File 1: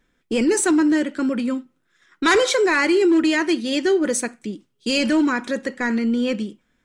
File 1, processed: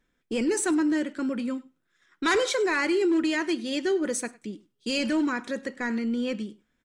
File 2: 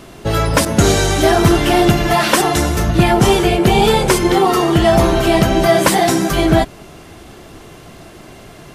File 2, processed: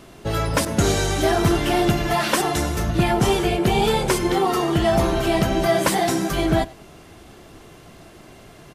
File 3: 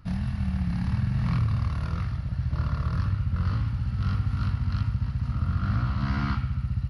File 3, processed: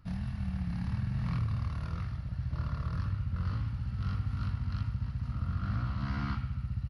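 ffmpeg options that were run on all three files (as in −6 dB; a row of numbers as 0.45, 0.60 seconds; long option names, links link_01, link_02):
-af "aecho=1:1:101:0.075,volume=-7dB"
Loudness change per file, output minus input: −7.0, −7.0, −7.0 LU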